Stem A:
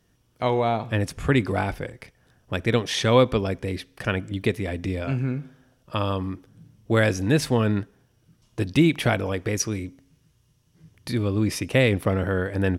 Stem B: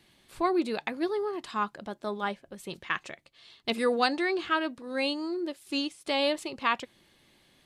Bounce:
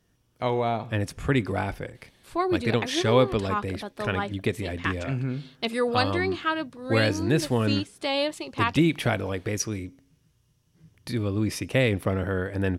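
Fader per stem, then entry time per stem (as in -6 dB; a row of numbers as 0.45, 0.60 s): -3.0, +1.0 dB; 0.00, 1.95 s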